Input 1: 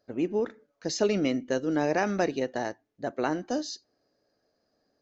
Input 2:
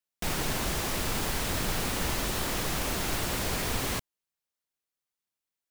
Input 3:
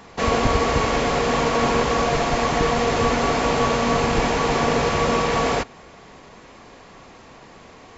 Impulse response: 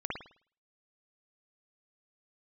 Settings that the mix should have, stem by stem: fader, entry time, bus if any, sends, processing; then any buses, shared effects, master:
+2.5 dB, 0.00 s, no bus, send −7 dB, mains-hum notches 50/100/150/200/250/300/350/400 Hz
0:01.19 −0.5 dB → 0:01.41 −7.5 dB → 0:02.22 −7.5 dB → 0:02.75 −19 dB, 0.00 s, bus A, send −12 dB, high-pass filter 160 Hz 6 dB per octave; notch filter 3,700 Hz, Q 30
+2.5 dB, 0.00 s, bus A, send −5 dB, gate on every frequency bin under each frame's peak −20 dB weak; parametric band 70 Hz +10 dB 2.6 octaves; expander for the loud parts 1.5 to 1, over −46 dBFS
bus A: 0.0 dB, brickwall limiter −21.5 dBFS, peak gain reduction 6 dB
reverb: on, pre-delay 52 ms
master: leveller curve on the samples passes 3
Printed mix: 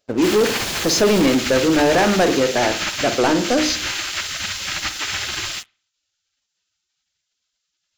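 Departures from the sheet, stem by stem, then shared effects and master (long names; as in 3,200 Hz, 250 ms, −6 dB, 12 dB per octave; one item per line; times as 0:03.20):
stem 2 −0.5 dB → −8.5 dB
stem 3 +2.5 dB → −4.0 dB
reverb return −6.5 dB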